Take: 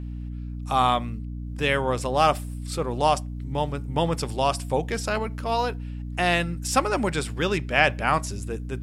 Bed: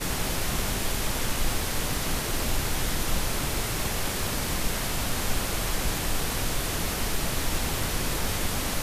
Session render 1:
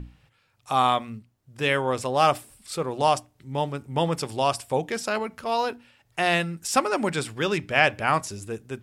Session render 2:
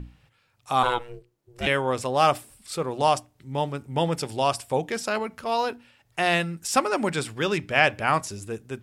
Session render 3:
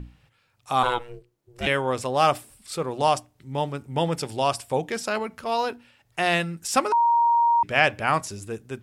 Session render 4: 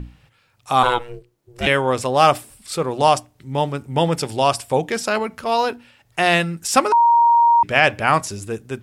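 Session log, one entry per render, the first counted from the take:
mains-hum notches 60/120/180/240/300 Hz
0:00.83–0:01.67: ring modulation 240 Hz; 0:03.91–0:04.42: notch filter 1,100 Hz, Q 6.9
0:06.92–0:07.63: beep over 938 Hz −16 dBFS
level +6 dB; brickwall limiter −1 dBFS, peak gain reduction 3 dB

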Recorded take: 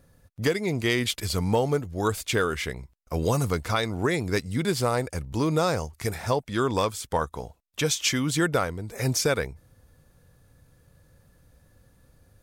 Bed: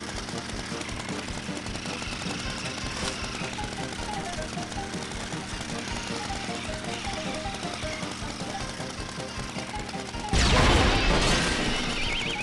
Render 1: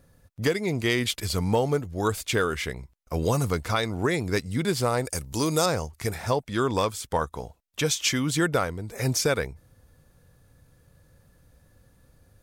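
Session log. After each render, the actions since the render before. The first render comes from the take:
0:05.05–0:05.66: bass and treble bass −3 dB, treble +13 dB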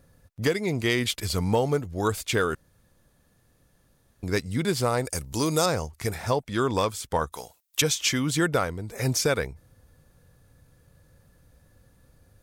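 0:02.55–0:04.23: fill with room tone
0:07.32–0:07.82: spectral tilt +4 dB per octave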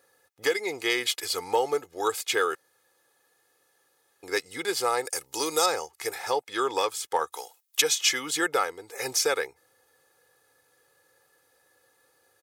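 high-pass filter 530 Hz 12 dB per octave
comb filter 2.4 ms, depth 66%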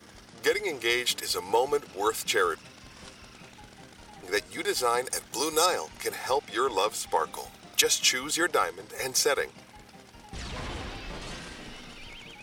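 mix in bed −16.5 dB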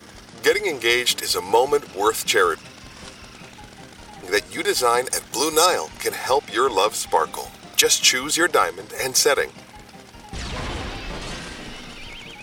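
level +7.5 dB
brickwall limiter −1 dBFS, peak gain reduction 2 dB

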